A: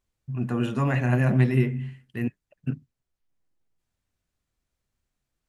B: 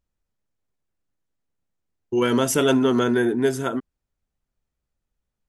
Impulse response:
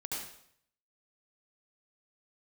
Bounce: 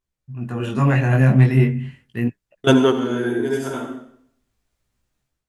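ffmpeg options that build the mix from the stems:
-filter_complex "[0:a]acontrast=65,flanger=delay=15.5:depth=7.2:speed=0.38,volume=-8.5dB,asplit=2[link_01][link_02];[1:a]volume=-5dB,asplit=3[link_03][link_04][link_05];[link_03]atrim=end=1.44,asetpts=PTS-STARTPTS,afade=type=out:start_time=1.436:duration=0.004:curve=hsin[link_06];[link_04]atrim=start=1.44:end=2.64,asetpts=PTS-STARTPTS,volume=0[link_07];[link_05]atrim=start=2.64,asetpts=PTS-STARTPTS,afade=type=in:duration=0.004:curve=hsin[link_08];[link_06][link_07][link_08]concat=n=3:v=0:a=1,asplit=2[link_09][link_10];[link_10]volume=-8.5dB[link_11];[link_02]apad=whole_len=241882[link_12];[link_09][link_12]sidechaingate=range=-33dB:threshold=-52dB:ratio=16:detection=peak[link_13];[2:a]atrim=start_sample=2205[link_14];[link_11][link_14]afir=irnorm=-1:irlink=0[link_15];[link_01][link_13][link_15]amix=inputs=3:normalize=0,dynaudnorm=framelen=400:gausssize=3:maxgain=12dB"

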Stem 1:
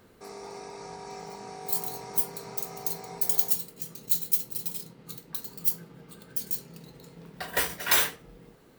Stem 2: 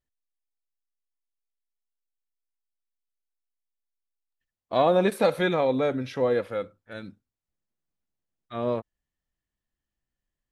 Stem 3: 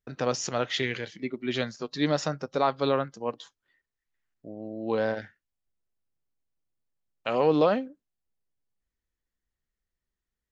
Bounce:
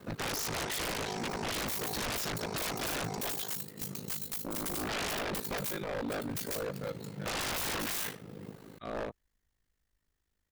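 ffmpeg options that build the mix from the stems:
ffmpeg -i stem1.wav -i stem2.wav -i stem3.wav -filter_complex "[0:a]highpass=frequency=120:width=0.5412,highpass=frequency=120:width=1.3066,lowshelf=frequency=180:gain=9.5,volume=0dB[link_01];[1:a]adelay=300,volume=-10.5dB[link_02];[2:a]volume=2dB[link_03];[link_01][link_02]amix=inputs=2:normalize=0,alimiter=limit=-17.5dB:level=0:latency=1:release=477,volume=0dB[link_04];[link_03][link_04]amix=inputs=2:normalize=0,acontrast=61,aeval=exprs='val(0)*sin(2*PI*26*n/s)':channel_layout=same,aeval=exprs='0.0335*(abs(mod(val(0)/0.0335+3,4)-2)-1)':channel_layout=same" out.wav

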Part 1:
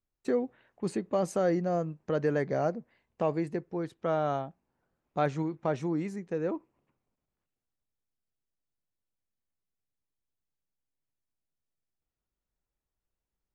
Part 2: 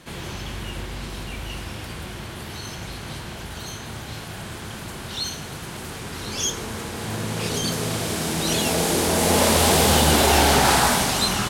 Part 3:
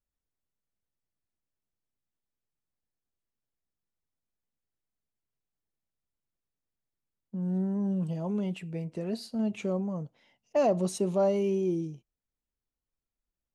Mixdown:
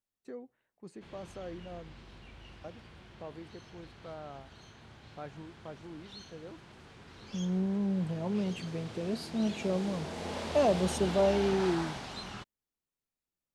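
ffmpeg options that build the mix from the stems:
ffmpeg -i stem1.wav -i stem2.wav -i stem3.wav -filter_complex "[0:a]volume=-16dB,asplit=3[link_01][link_02][link_03];[link_01]atrim=end=1.94,asetpts=PTS-STARTPTS,afade=type=out:start_time=1.936:duration=0.004:curve=hsin[link_04];[link_02]atrim=start=1.94:end=2.64,asetpts=PTS-STARTPTS,volume=0[link_05];[link_03]atrim=start=2.64,asetpts=PTS-STARTPTS,afade=type=in:duration=0.004:curve=hsin[link_06];[link_04][link_05][link_06]concat=n=3:v=0:a=1[link_07];[1:a]lowpass=4500,adelay=950,volume=-19dB[link_08];[2:a]highpass=120,volume=-1dB[link_09];[link_07][link_08][link_09]amix=inputs=3:normalize=0" out.wav

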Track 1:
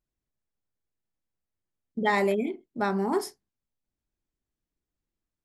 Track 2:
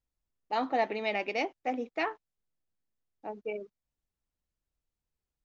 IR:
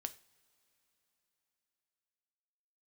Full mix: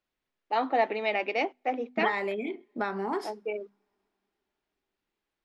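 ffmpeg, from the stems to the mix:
-filter_complex "[0:a]equalizer=frequency=2600:width=0.48:gain=7,acompressor=threshold=-30dB:ratio=10,volume=1.5dB,asplit=2[link_01][link_02];[link_02]volume=-9dB[link_03];[1:a]bandreject=frequency=50:width_type=h:width=6,bandreject=frequency=100:width_type=h:width=6,bandreject=frequency=150:width_type=h:width=6,bandreject=frequency=200:width_type=h:width=6,bandreject=frequency=250:width_type=h:width=6,volume=3dB,asplit=2[link_04][link_05];[link_05]volume=-22dB[link_06];[2:a]atrim=start_sample=2205[link_07];[link_03][link_06]amix=inputs=2:normalize=0[link_08];[link_08][link_07]afir=irnorm=-1:irlink=0[link_09];[link_01][link_04][link_09]amix=inputs=3:normalize=0,acrossover=split=210 4300:gain=0.2 1 0.224[link_10][link_11][link_12];[link_10][link_11][link_12]amix=inputs=3:normalize=0"

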